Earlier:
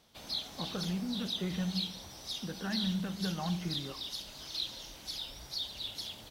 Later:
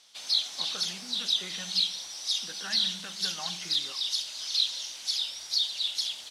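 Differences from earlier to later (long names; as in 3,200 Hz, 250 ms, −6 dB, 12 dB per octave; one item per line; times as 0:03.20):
background: remove high-pass filter 44 Hz
master: add meter weighting curve ITU-R 468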